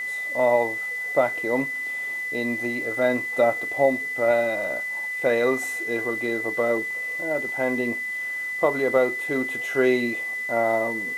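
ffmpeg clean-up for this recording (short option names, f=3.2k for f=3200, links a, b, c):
-af "adeclick=t=4,bandreject=f=2k:w=30,afwtdn=0.0035"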